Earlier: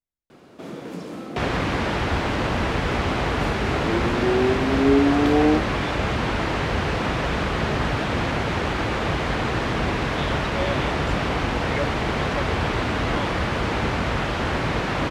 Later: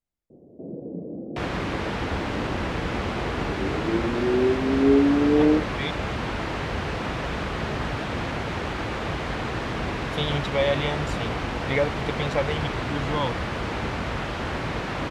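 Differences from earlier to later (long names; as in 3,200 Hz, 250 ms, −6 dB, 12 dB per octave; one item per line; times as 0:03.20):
speech +6.0 dB
first sound: add Butterworth low-pass 600 Hz 36 dB per octave
second sound −5.0 dB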